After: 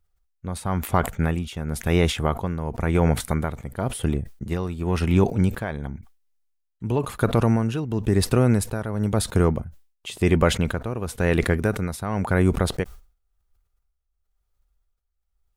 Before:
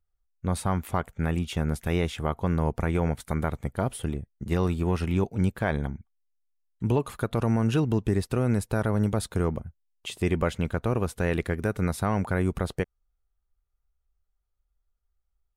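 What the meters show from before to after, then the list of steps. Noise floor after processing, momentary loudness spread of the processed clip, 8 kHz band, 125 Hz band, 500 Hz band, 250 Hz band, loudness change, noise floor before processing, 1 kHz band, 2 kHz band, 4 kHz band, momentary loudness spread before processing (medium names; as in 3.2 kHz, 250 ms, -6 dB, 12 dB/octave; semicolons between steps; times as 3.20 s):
-75 dBFS, 11 LU, +7.5 dB, +3.5 dB, +4.5 dB, +4.0 dB, +4.0 dB, -77 dBFS, +3.5 dB, +4.5 dB, +7.0 dB, 8 LU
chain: tremolo 0.96 Hz, depth 71%; decay stretcher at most 140 dB/s; trim +7 dB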